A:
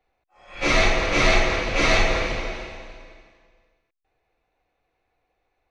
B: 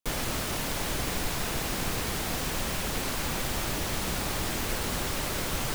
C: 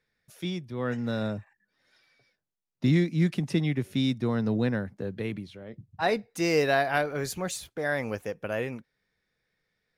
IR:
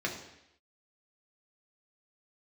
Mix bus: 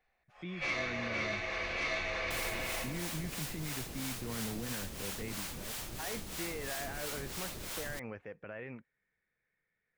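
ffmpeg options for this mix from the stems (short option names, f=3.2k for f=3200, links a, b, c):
-filter_complex "[0:a]dynaudnorm=f=290:g=3:m=11.5dB,equalizer=f=240:w=0.5:g=-8.5,acompressor=threshold=-20dB:ratio=6,volume=-5dB,asplit=2[a][b];[b]volume=-14dB[c];[1:a]acrossover=split=1900|5900[d][e][f];[d]acompressor=threshold=-43dB:ratio=4[g];[e]acompressor=threshold=-46dB:ratio=4[h];[f]acompressor=threshold=-41dB:ratio=4[i];[g][h][i]amix=inputs=3:normalize=0,acrossover=split=530[j][k];[j]aeval=exprs='val(0)*(1-0.7/2+0.7/2*cos(2*PI*3*n/s))':c=same[l];[k]aeval=exprs='val(0)*(1-0.7/2-0.7/2*cos(2*PI*3*n/s))':c=same[m];[l][m]amix=inputs=2:normalize=0,adelay=2250,volume=0.5dB[n];[2:a]lowpass=f=2.1k:t=q:w=1.9,volume=-9dB,asplit=2[o][p];[p]apad=whole_len=251427[q];[a][q]sidechaincompress=threshold=-56dB:ratio=4:attack=16:release=614[r];[r][o]amix=inputs=2:normalize=0,alimiter=level_in=10dB:limit=-24dB:level=0:latency=1:release=33,volume=-10dB,volume=0dB[s];[3:a]atrim=start_sample=2205[t];[c][t]afir=irnorm=-1:irlink=0[u];[n][s][u]amix=inputs=3:normalize=0"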